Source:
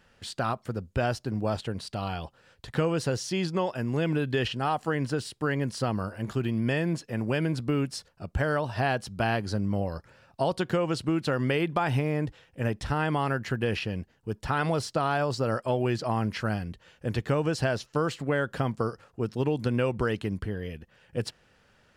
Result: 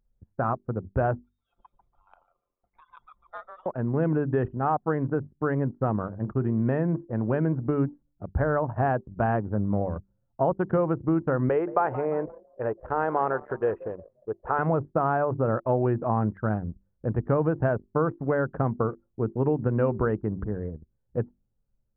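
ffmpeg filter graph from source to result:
-filter_complex "[0:a]asettb=1/sr,asplit=3[s0][s1][s2];[s0]atrim=end=1.194[s3];[s1]atrim=start=1.19:end=3.66,asetpts=PTS-STARTPTS,afade=t=in:d=0.004:c=qsin,afade=t=out:st=2.466:d=0.004:c=qsin,lowpass=f=3300:t=q:w=0.5098,lowpass=f=3300:t=q:w=0.6013,lowpass=f=3300:t=q:w=0.9,lowpass=f=3300:t=q:w=2.563,afreqshift=-3900,asplit=7[s4][s5][s6][s7][s8][s9][s10];[s5]adelay=145,afreqshift=-76,volume=0.668[s11];[s6]adelay=290,afreqshift=-152,volume=0.295[s12];[s7]adelay=435,afreqshift=-228,volume=0.129[s13];[s8]adelay=580,afreqshift=-304,volume=0.0569[s14];[s9]adelay=725,afreqshift=-380,volume=0.0251[s15];[s10]adelay=870,afreqshift=-456,volume=0.011[s16];[s4][s11][s12][s13][s14][s15][s16]amix=inputs=7:normalize=0,atrim=end_sample=108927[s17];[s2]atrim=start=3.656[s18];[s3][s17]acrossfade=d=0.004:c1=hsin:c2=qsin[s19];[s19][s18]acrossfade=d=0.004:c1=qsin:c2=hsin,asettb=1/sr,asplit=3[s20][s21][s22];[s20]atrim=end=11.494[s23];[s21]atrim=start=11.49:end=14.59,asetpts=PTS-STARTPTS,afade=t=in:d=0.004:c=qsin,afade=t=out:st=3.096:d=0.004:c=qsin,lowshelf=f=300:t=q:w=1.5:g=-11,asplit=6[s24][s25][s26][s27][s28][s29];[s25]adelay=175,afreqshift=47,volume=0.168[s30];[s26]adelay=350,afreqshift=94,volume=0.0902[s31];[s27]adelay=525,afreqshift=141,volume=0.049[s32];[s28]adelay=700,afreqshift=188,volume=0.0263[s33];[s29]adelay=875,afreqshift=235,volume=0.0143[s34];[s24][s30][s31][s32][s33][s34]amix=inputs=6:normalize=0,atrim=end_sample=136710[s35];[s22]atrim=start=14.586[s36];[s23][s35]acrossfade=d=0.004:c1=hsin:c2=qsin[s37];[s37][s36]acrossfade=d=0.004:c1=qsin:c2=hsin,lowpass=f=1400:w=0.5412,lowpass=f=1400:w=1.3066,bandreject=f=48.55:t=h:w=4,bandreject=f=97.1:t=h:w=4,bandreject=f=145.65:t=h:w=4,bandreject=f=194.2:t=h:w=4,bandreject=f=242.75:t=h:w=4,bandreject=f=291.3:t=h:w=4,bandreject=f=339.85:t=h:w=4,bandreject=f=388.4:t=h:w=4,anlmdn=1.58,volume=1.41"

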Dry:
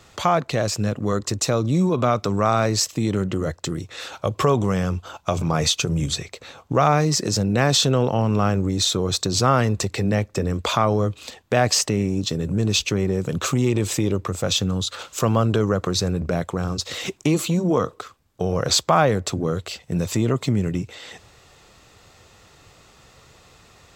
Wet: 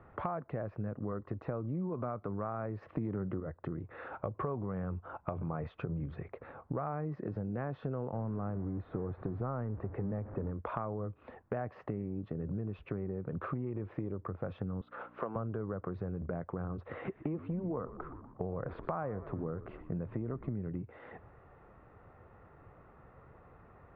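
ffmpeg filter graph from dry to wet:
-filter_complex "[0:a]asettb=1/sr,asplit=3[s0][s1][s2];[s0]atrim=end=2.824[s3];[s1]atrim=start=2.82:end=3.4,asetpts=PTS-STARTPTS,afade=t=in:d=0.004:c=qsin,afade=t=out:st=0.576:d=0.004:c=qsin,highpass=50,acontrast=80[s4];[s2]atrim=start=3.396[s5];[s3][s4]acrossfade=d=0.004:c1=hsin:c2=qsin[s6];[s6][s5]acrossfade=d=0.004:c1=qsin:c2=hsin,asettb=1/sr,asplit=3[s7][s8][s9];[s7]atrim=end=8.134[s10];[s8]atrim=start=8.13:end=10.51,asetpts=PTS-STARTPTS,afade=t=in:d=0.004:c=qsin,afade=t=out:st=2.376:d=0.004:c=qsin,aeval=exprs='val(0)+0.5*0.0531*sgn(val(0))':c=same,lowpass=f=1000:p=1[s11];[s9]atrim=start=10.506[s12];[s10][s11]acrossfade=d=0.004:c1=hsin:c2=qsin[s13];[s13][s12]acrossfade=d=0.004:c1=qsin:c2=hsin,asettb=1/sr,asplit=3[s14][s15][s16];[s14]atrim=end=14.814[s17];[s15]atrim=start=14.81:end=15.36,asetpts=PTS-STARTPTS,afade=t=in:d=0.004:c=qsin,afade=t=out:st=0.546:d=0.004:c=qsin,aeval=exprs='val(0)+0.00891*(sin(2*PI*60*n/s)+sin(2*PI*2*60*n/s)/2+sin(2*PI*3*60*n/s)/3+sin(2*PI*4*60*n/s)/4+sin(2*PI*5*60*n/s)/5)':c=same,highpass=330,lowpass=5200[s18];[s16]atrim=start=15.356[s19];[s17][s18]acrossfade=d=0.004:c1=hsin:c2=qsin[s20];[s20][s19]acrossfade=d=0.004:c1=qsin:c2=hsin,asettb=1/sr,asplit=3[s21][s22][s23];[s21]atrim=end=16.814[s24];[s22]atrim=start=16.81:end=20.53,asetpts=PTS-STARTPTS,afade=t=in:d=0.004:c=qsin,afade=t=out:st=3.716:d=0.004:c=qsin,lowpass=3600,asplit=6[s25][s26][s27][s28][s29][s30];[s26]adelay=121,afreqshift=-59,volume=0.133[s31];[s27]adelay=242,afreqshift=-118,volume=0.0785[s32];[s28]adelay=363,afreqshift=-177,volume=0.0462[s33];[s29]adelay=484,afreqshift=-236,volume=0.0275[s34];[s30]adelay=605,afreqshift=-295,volume=0.0162[s35];[s25][s31][s32][s33][s34][s35]amix=inputs=6:normalize=0,atrim=end_sample=164052[s36];[s23]atrim=start=20.526[s37];[s24][s36]acrossfade=d=0.004:c1=hsin:c2=qsin[s38];[s38][s37]acrossfade=d=0.004:c1=qsin:c2=hsin,lowpass=f=1700:w=0.5412,lowpass=f=1700:w=1.3066,aemphasis=mode=reproduction:type=75fm,acompressor=threshold=0.0316:ratio=5,volume=0.562"

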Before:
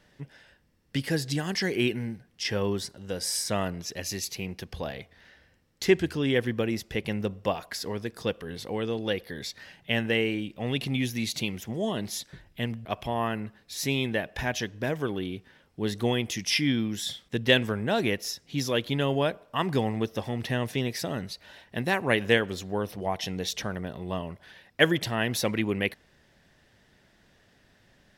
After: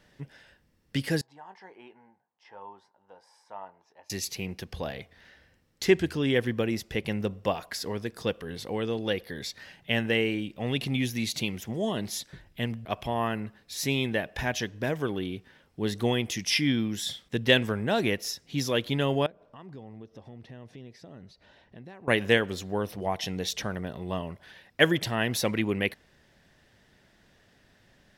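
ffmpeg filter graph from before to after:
-filter_complex "[0:a]asettb=1/sr,asplit=3[s0][s1][s2];[s0]atrim=end=1.214[s3];[s1]atrim=start=1.21:end=4.1,asetpts=PTS-STARTPTS,afade=t=in:d=0.004:c=qsin,afade=t=out:st=2.886:d=0.004:c=qsin,bandpass=f=890:t=q:w=7.7,asplit=2[s4][s5];[s5]adelay=21,volume=0.266[s6];[s4][s6]amix=inputs=2:normalize=0,atrim=end_sample=127449[s7];[s2]atrim=start=4.096[s8];[s3][s7]acrossfade=d=0.004:c1=hsin:c2=qsin[s9];[s9][s8]acrossfade=d=0.004:c1=qsin:c2=hsin,asettb=1/sr,asplit=3[s10][s11][s12];[s10]atrim=end=19.264[s13];[s11]atrim=start=19.26:end=22.08,asetpts=PTS-STARTPTS,afade=t=in:d=0.004:c=qsin,afade=t=out:st=2.816:d=0.004:c=qsin,acompressor=threshold=0.00355:ratio=2.5:attack=3.2:release=140:knee=1:detection=peak,lowpass=4500,equalizer=f=2400:t=o:w=2.6:g=-7.5[s14];[s12]atrim=start=22.076[s15];[s13][s14]acrossfade=d=0.004:c1=hsin:c2=qsin[s16];[s16][s15]acrossfade=d=0.004:c1=qsin:c2=hsin"

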